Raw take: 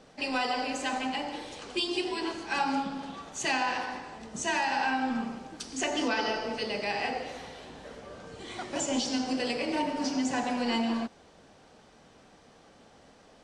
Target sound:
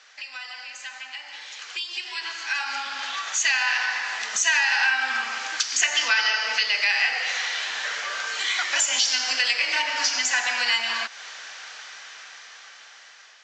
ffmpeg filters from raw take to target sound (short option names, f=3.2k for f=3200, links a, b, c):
-af "highpass=f=1.7k:t=q:w=1.8,highshelf=f=5.9k:g=8,acompressor=threshold=-48dB:ratio=2.5,aresample=16000,aresample=44100,dynaudnorm=f=780:g=7:m=16dB,volume=6dB"